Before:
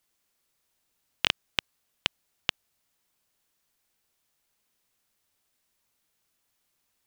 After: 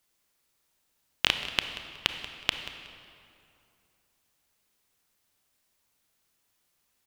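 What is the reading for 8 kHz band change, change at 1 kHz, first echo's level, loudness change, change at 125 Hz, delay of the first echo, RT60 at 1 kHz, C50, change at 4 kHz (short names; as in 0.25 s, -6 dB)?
+1.5 dB, +2.0 dB, -15.5 dB, +1.0 dB, +2.0 dB, 0.184 s, 2.5 s, 7.5 dB, +1.5 dB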